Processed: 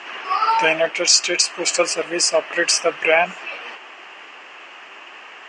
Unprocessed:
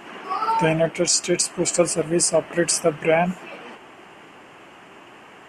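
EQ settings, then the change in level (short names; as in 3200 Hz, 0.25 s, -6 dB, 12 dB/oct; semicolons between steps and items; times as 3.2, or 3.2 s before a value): speaker cabinet 480–5700 Hz, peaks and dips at 1200 Hz +3 dB, 1800 Hz +4 dB, 2600 Hz +5 dB; high shelf 3600 Hz +11.5 dB; +2.0 dB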